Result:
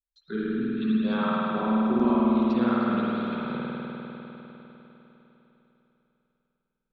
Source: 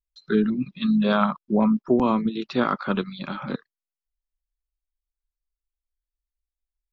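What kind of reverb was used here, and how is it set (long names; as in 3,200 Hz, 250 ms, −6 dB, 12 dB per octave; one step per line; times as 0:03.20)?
spring reverb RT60 3.8 s, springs 50 ms, chirp 70 ms, DRR −8 dB
level −11.5 dB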